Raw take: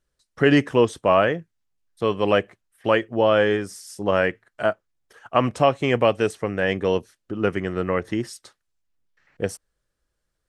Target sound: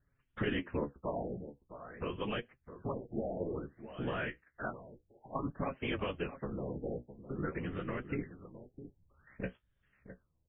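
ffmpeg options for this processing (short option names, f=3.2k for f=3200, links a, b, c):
-filter_complex "[0:a]acompressor=threshold=-45dB:ratio=2,equalizer=f=630:w=0.86:g=-8.5,afftfilt=real='hypot(re,im)*cos(2*PI*random(0))':imag='hypot(re,im)*sin(2*PI*random(1))':win_size=512:overlap=0.75,flanger=delay=7:depth=9.7:regen=40:speed=0.36:shape=sinusoidal,aresample=11025,aresample=44100,asplit=2[a][b];[b]aecho=0:1:660:0.237[c];[a][c]amix=inputs=2:normalize=0,afftfilt=real='re*lt(b*sr/1024,840*pow(3800/840,0.5+0.5*sin(2*PI*0.54*pts/sr)))':imag='im*lt(b*sr/1024,840*pow(3800/840,0.5+0.5*sin(2*PI*0.54*pts/sr)))':win_size=1024:overlap=0.75,volume=13dB"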